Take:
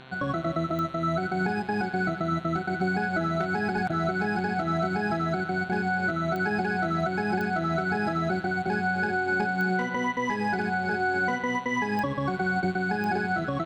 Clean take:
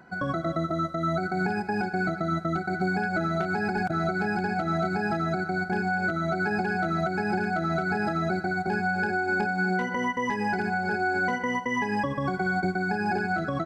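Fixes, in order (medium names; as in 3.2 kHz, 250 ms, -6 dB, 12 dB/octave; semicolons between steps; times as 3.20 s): de-click; de-hum 130.9 Hz, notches 33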